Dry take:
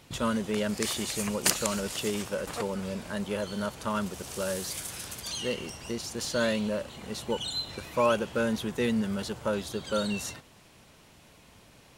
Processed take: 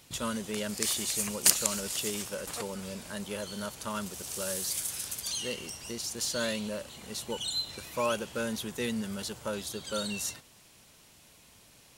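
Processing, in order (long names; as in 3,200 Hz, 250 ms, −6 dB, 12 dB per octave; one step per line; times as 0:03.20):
high-shelf EQ 3,700 Hz +12 dB
level −6 dB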